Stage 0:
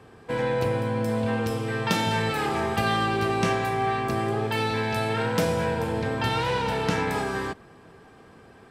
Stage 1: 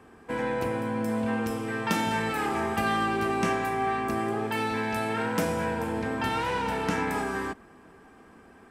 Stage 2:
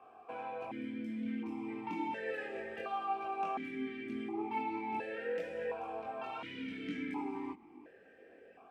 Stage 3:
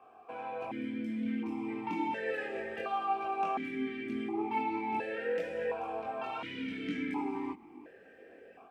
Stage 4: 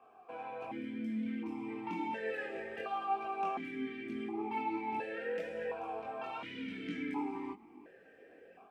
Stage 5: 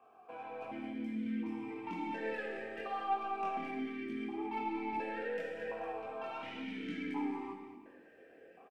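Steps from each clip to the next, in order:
ten-band graphic EQ 125 Hz -11 dB, 250 Hz +4 dB, 500 Hz -5 dB, 4 kHz -8 dB
compression 3:1, threshold -34 dBFS, peak gain reduction 9.5 dB; chorus voices 6, 0.91 Hz, delay 22 ms, depth 1.5 ms; stepped vowel filter 1.4 Hz; trim +10 dB
level rider gain up to 4 dB
flange 0.91 Hz, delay 4.2 ms, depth 3 ms, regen +73%; trim +1 dB
tracing distortion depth 0.021 ms; delay 219 ms -10.5 dB; on a send at -6 dB: reverberation, pre-delay 15 ms; on the sum: trim -2 dB

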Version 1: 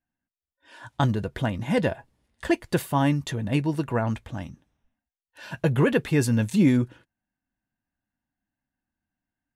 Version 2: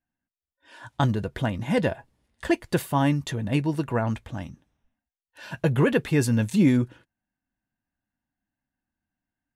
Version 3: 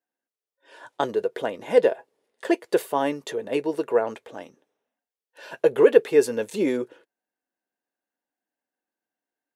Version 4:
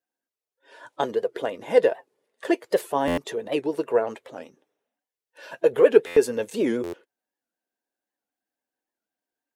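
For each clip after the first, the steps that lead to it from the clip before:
no audible change
resonant high-pass 440 Hz, resonance Q 4.9; trim -2 dB
coarse spectral quantiser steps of 15 dB; buffer glitch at 3.07/6.06/6.83 s, samples 512, times 8; warped record 78 rpm, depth 160 cents

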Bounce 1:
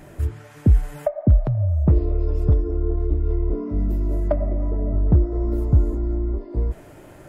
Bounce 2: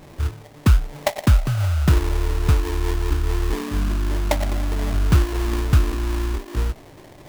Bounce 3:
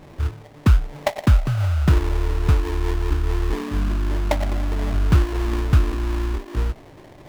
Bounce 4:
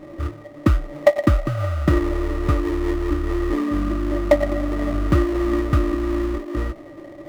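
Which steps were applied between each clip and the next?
sample-rate reducer 1.4 kHz, jitter 20%
treble shelf 5.1 kHz -8.5 dB
small resonant body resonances 320/570/1200/1900 Hz, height 18 dB, ringing for 65 ms; trim -4 dB

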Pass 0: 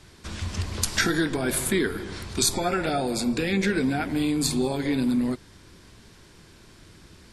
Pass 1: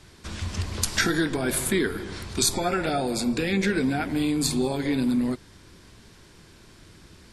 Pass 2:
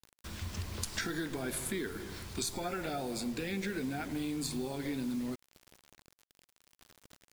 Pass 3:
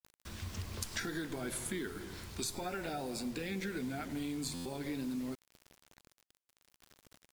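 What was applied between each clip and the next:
no audible change
compression 3:1, threshold -25 dBFS, peak gain reduction 6 dB; bit crusher 7-bit; trim -8.5 dB
vibrato 0.43 Hz 59 cents; buffer glitch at 4.54/6.37 s, samples 512, times 9; trim -2.5 dB

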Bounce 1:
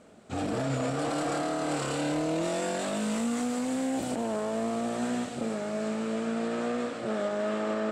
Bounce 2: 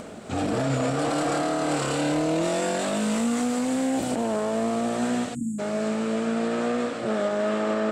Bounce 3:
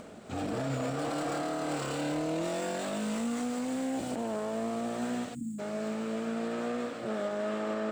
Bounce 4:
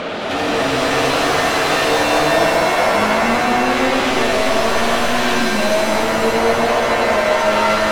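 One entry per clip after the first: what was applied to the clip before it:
spectral selection erased 5.35–5.59 s, 320–6600 Hz; upward compressor, threshold -35 dBFS; trim +5 dB
median filter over 3 samples; trim -8 dB
LFO low-pass square 0.27 Hz 820–3500 Hz; overdrive pedal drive 32 dB, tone 2.5 kHz, clips at -19.5 dBFS; pitch-shifted reverb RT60 3.1 s, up +7 st, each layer -2 dB, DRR -0.5 dB; trim +5 dB

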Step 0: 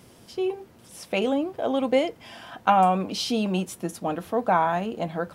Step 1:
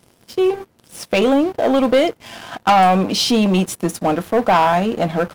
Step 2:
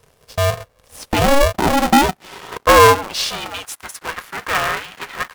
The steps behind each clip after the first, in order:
waveshaping leveller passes 3
high-pass sweep 150 Hz -> 1.5 kHz, 0.27–4.12 s; polarity switched at an audio rate 280 Hz; trim -3 dB

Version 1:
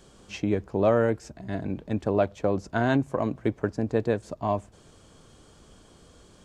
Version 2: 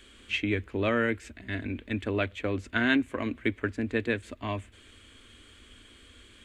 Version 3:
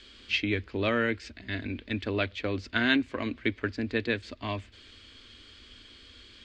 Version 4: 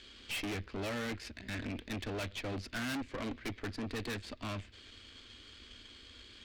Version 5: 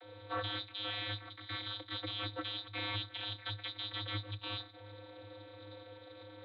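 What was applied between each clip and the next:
FFT filter 100 Hz 0 dB, 150 Hz -23 dB, 240 Hz +1 dB, 800 Hz -12 dB, 2.1 kHz +12 dB, 3.5 kHz +8 dB, 5.4 kHz -8 dB, 8 kHz 0 dB
resonant low-pass 4.8 kHz, resonance Q 4.4; trim -1 dB
valve stage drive 38 dB, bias 0.8; trim +2.5 dB
modulation noise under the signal 11 dB; frequency inversion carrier 3.8 kHz; vocoder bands 32, square 103 Hz; trim -1 dB

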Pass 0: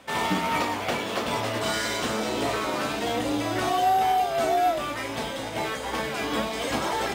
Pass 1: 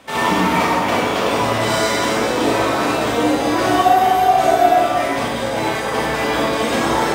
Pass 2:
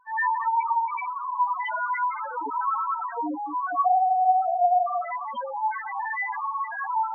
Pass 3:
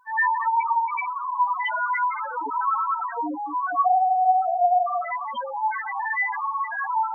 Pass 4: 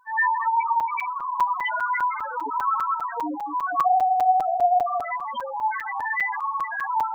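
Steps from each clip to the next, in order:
reverberation RT60 1.7 s, pre-delay 33 ms, DRR -4.5 dB; trim +4 dB
high-order bell 1.8 kHz +11.5 dB 2.6 oct; level rider; loudest bins only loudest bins 2; trim -6 dB
treble shelf 2.1 kHz +10.5 dB
crackling interface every 0.20 s, samples 256, zero, from 0.80 s

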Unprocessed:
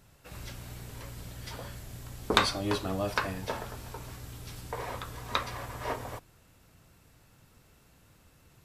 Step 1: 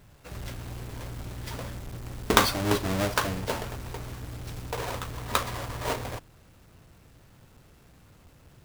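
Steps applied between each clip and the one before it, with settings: square wave that keeps the level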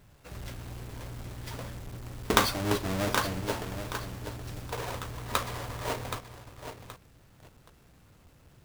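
bit-crushed delay 774 ms, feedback 35%, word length 7-bit, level -8 dB; trim -3 dB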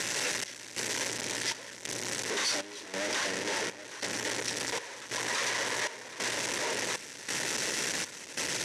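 one-bit comparator; trance gate "xxxx...xxx" 138 bpm -12 dB; cabinet simulation 370–9300 Hz, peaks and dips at 720 Hz -8 dB, 1.2 kHz -9 dB, 1.9 kHz +6 dB, 5.9 kHz +7 dB; trim +5.5 dB

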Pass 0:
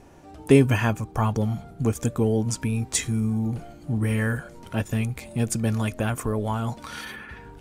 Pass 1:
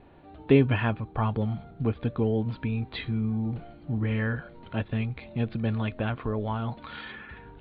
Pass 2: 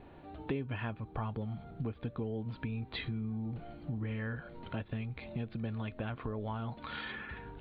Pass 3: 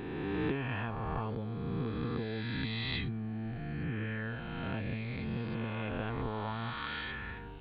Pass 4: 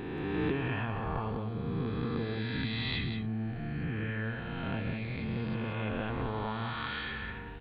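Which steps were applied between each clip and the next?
steep low-pass 4.2 kHz 96 dB/octave; trim -3.5 dB
compression 4:1, threshold -36 dBFS, peak gain reduction 18.5 dB
reverse spectral sustain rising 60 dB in 2.62 s; band-stop 590 Hz, Q 12; trim -1.5 dB
delay 182 ms -8.5 dB; trim +1.5 dB

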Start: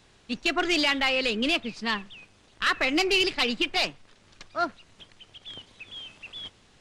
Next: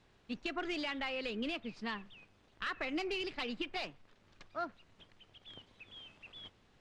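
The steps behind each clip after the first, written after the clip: compression 2.5:1, threshold -27 dBFS, peak gain reduction 6 dB; low-pass 2.4 kHz 6 dB/octave; trim -7.5 dB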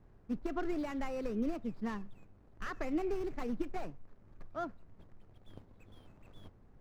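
median filter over 15 samples; tilt EQ -2.5 dB/octave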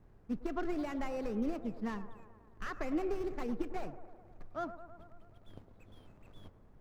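feedback echo behind a band-pass 107 ms, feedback 67%, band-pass 740 Hz, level -11 dB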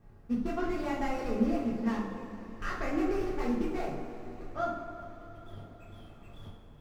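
two-slope reverb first 0.57 s, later 4.8 s, from -16 dB, DRR -5.5 dB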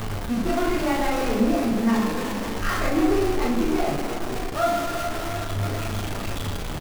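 jump at every zero crossing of -29.5 dBFS; flange 0.34 Hz, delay 8.9 ms, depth 7.1 ms, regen +57%; doubling 39 ms -6 dB; trim +9 dB

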